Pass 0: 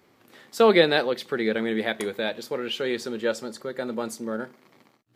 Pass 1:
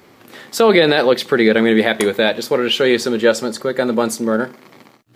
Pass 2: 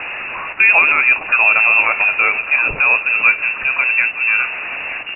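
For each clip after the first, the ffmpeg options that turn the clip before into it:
-af "alimiter=level_in=5.01:limit=0.891:release=50:level=0:latency=1,volume=0.891"
-af "aeval=exprs='val(0)+0.5*0.119*sgn(val(0))':c=same,aecho=1:1:920:0.168,lowpass=f=2500:t=q:w=0.5098,lowpass=f=2500:t=q:w=0.6013,lowpass=f=2500:t=q:w=0.9,lowpass=f=2500:t=q:w=2.563,afreqshift=-2900,volume=0.891"

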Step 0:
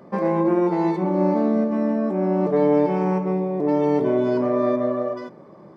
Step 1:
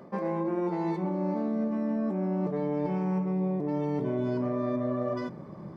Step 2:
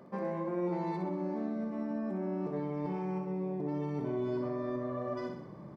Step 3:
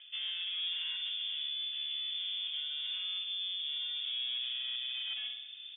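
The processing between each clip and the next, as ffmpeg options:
-af "asubboost=boost=4:cutoff=200,areverse,acompressor=threshold=0.0447:ratio=6,areverse"
-af "aecho=1:1:62|124|186|248|310|372|434:0.501|0.286|0.163|0.0928|0.0529|0.0302|0.0172,volume=0.531"
-af "aresample=11025,asoftclip=type=tanh:threshold=0.0237,aresample=44100,lowpass=f=3100:t=q:w=0.5098,lowpass=f=3100:t=q:w=0.6013,lowpass=f=3100:t=q:w=0.9,lowpass=f=3100:t=q:w=2.563,afreqshift=-3700"

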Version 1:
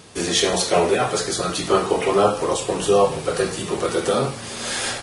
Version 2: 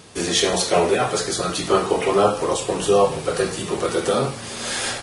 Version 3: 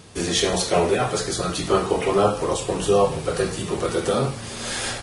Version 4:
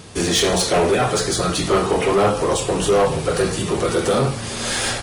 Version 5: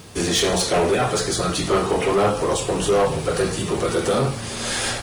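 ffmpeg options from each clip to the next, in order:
-af anull
-af "lowshelf=f=130:g=10,volume=0.75"
-af "asoftclip=type=tanh:threshold=0.141,volume=2"
-af "acrusher=bits=7:mix=0:aa=0.5,volume=0.794"

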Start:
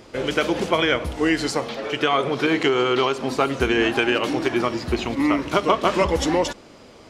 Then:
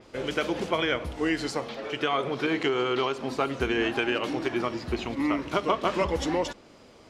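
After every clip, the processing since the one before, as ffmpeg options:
-af "adynamicequalizer=threshold=0.00891:dfrequency=5500:dqfactor=0.7:tfrequency=5500:tqfactor=0.7:attack=5:release=100:ratio=0.375:range=2:mode=cutabove:tftype=highshelf,volume=0.473"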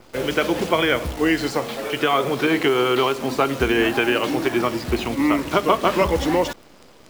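-filter_complex "[0:a]acrossover=split=190|3200[s0][s1][s2];[s2]alimiter=level_in=2.99:limit=0.0631:level=0:latency=1,volume=0.335[s3];[s0][s1][s3]amix=inputs=3:normalize=0,acrusher=bits=8:dc=4:mix=0:aa=0.000001,volume=2.37"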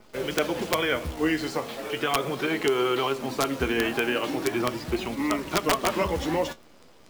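-af "flanger=delay=4.7:depth=8.3:regen=53:speed=0.38:shape=sinusoidal,aeval=exprs='(mod(3.55*val(0)+1,2)-1)/3.55':c=same,volume=0.794"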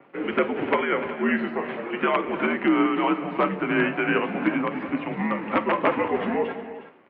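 -af "aecho=1:1:48|187|300|363:0.15|0.141|0.168|0.188,tremolo=f=2.9:d=0.39,highpass=f=290:t=q:w=0.5412,highpass=f=290:t=q:w=1.307,lowpass=f=2600:t=q:w=0.5176,lowpass=f=2600:t=q:w=0.7071,lowpass=f=2600:t=q:w=1.932,afreqshift=-83,volume=1.78"

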